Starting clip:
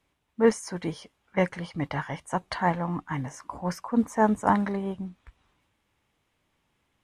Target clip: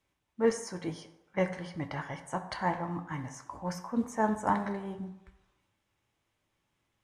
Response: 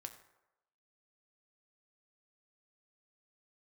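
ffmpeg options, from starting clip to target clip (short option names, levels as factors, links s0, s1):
-filter_complex "[0:a]equalizer=f=6200:w=1.5:g=3.5[s0];[1:a]atrim=start_sample=2205[s1];[s0][s1]afir=irnorm=-1:irlink=0,volume=0.891"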